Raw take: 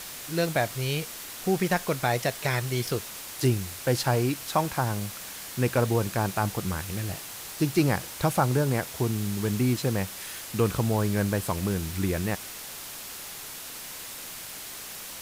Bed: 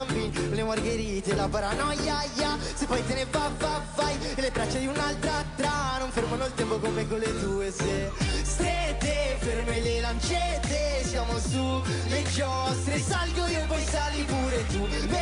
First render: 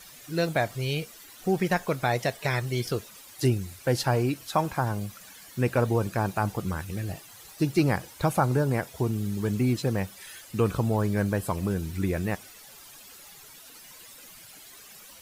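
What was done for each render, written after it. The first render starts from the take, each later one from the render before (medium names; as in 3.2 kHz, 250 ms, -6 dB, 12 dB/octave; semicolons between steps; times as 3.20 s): noise reduction 13 dB, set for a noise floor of -40 dBFS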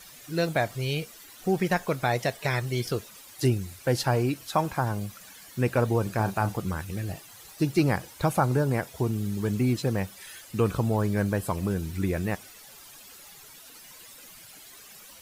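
6.03–6.58 s: doubling 36 ms -10 dB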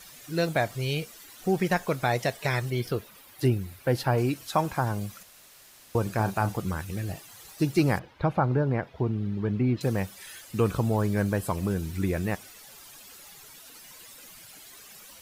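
2.70–4.18 s: peaking EQ 6.9 kHz -9.5 dB 1.3 oct; 5.23–5.95 s: room tone; 7.99–9.81 s: distance through air 330 m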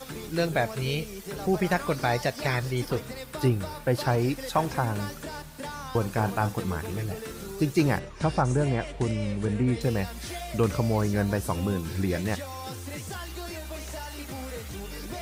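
add bed -10 dB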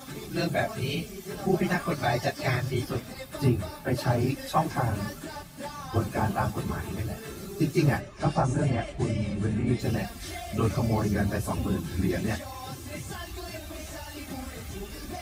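phase randomisation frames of 50 ms; comb of notches 480 Hz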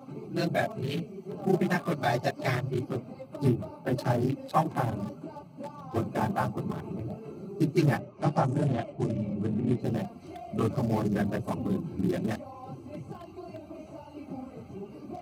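local Wiener filter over 25 samples; high-pass 120 Hz 24 dB/octave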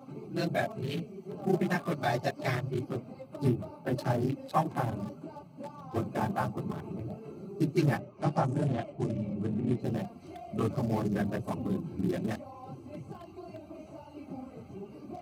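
trim -2.5 dB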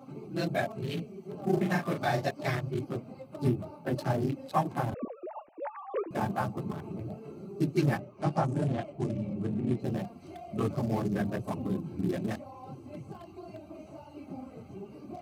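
1.53–2.27 s: doubling 38 ms -6 dB; 4.94–6.11 s: formants replaced by sine waves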